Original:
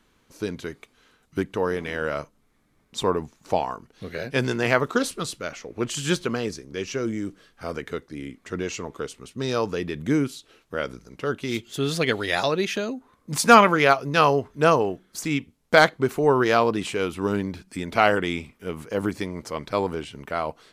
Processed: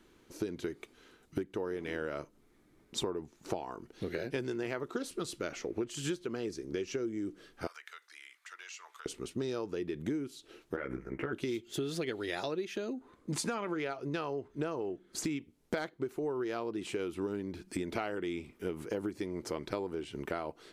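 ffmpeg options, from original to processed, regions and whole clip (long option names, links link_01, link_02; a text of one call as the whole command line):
ffmpeg -i in.wav -filter_complex "[0:a]asettb=1/sr,asplit=3[link_01][link_02][link_03];[link_01]atrim=end=7.674[link_04];[link_02]atrim=start=7.67:end=9.06,asetpts=PTS-STARTPTS,afade=type=in:duration=0.004:curve=qsin,afade=type=out:start_time=1.386:duration=0.004:curve=qsin,highpass=frequency=1100:width=0.5412,highpass=frequency=1100:width=1.3066,acompressor=threshold=-45dB:ratio=3:attack=3.2:release=140:knee=1:detection=peak[link_05];[link_03]atrim=start=9.056[link_06];[link_04][link_05]acrossfade=duration=0.004:curve1=hsin:curve2=qsin[link_07];[link_07][link_06]acrossfade=duration=0.004:curve1=qsin:curve2=hsin,asettb=1/sr,asplit=3[link_08][link_09][link_10];[link_08]atrim=end=10.764[link_11];[link_09]atrim=start=10.76:end=11.33,asetpts=PTS-STARTPTS,afade=type=in:duration=0.004:curve=qsin,afade=type=out:start_time=0.566:duration=0.004:curve=qsin,highshelf=frequency=2900:width_type=q:width=3:gain=-14,acompressor=threshold=-32dB:ratio=3:attack=3.2:release=140:knee=1:detection=peak,asplit=2[link_12][link_13];[link_13]adelay=15,volume=-2dB[link_14];[link_12][link_14]amix=inputs=2:normalize=0,atrim=end_sample=25137[link_15];[link_10]atrim=start=11.326[link_16];[link_11][link_15]acrossfade=duration=0.004:curve1=hsin:curve2=qsin[link_17];[link_17][link_16]acrossfade=duration=0.004:curve1=qsin:curve2=hsin,asettb=1/sr,asplit=3[link_18][link_19][link_20];[link_18]atrim=end=12.934[link_21];[link_19]atrim=start=12.93:end=15.24,asetpts=PTS-STARTPTS,afade=type=in:duration=0.004:curve=qsin,afade=type=out:start_time=2.306:duration=0.004:curve=qsin,lowpass=9400,equalizer=frequency=5500:width=6.6:gain=-4.5,acompressor=threshold=-17dB:ratio=2:attack=3.2:release=140:knee=1:detection=peak[link_22];[link_20]atrim=start=15.236[link_23];[link_21][link_22]acrossfade=duration=0.004:curve1=hsin:curve2=qsin[link_24];[link_24][link_23]acrossfade=duration=0.004:curve1=qsin:curve2=hsin,equalizer=frequency=350:width=2.5:gain=10.5,bandreject=frequency=1100:width=17,acompressor=threshold=-30dB:ratio=16,volume=-2dB" out.wav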